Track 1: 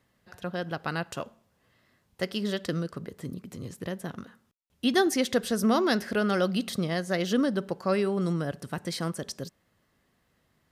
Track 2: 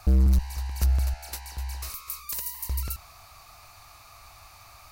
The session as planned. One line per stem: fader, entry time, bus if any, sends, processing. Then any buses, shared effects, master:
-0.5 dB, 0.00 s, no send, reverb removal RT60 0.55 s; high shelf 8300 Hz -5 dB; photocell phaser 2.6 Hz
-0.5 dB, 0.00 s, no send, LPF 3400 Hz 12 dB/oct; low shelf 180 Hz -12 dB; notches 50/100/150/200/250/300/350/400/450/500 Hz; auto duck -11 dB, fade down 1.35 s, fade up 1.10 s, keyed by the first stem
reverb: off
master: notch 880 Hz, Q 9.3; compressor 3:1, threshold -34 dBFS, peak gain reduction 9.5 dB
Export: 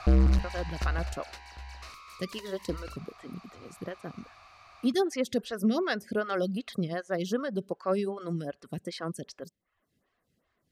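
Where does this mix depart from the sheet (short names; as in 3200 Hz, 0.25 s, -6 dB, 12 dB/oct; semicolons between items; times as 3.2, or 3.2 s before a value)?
stem 2 -0.5 dB -> +10.0 dB; master: missing compressor 3:1, threshold -34 dBFS, peak gain reduction 9.5 dB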